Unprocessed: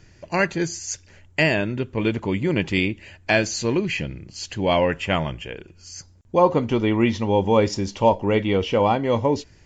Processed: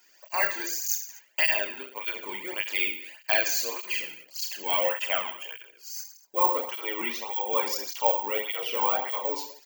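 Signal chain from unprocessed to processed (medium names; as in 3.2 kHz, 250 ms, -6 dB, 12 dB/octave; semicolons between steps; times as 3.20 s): Chebyshev high-pass 840 Hz, order 2; treble shelf 4.6 kHz +9 dB; on a send: reverse bouncing-ball echo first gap 30 ms, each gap 1.25×, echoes 5; on the sum: careless resampling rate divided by 2×, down none, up zero stuff; cancelling through-zero flanger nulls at 1.7 Hz, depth 1.8 ms; trim -4 dB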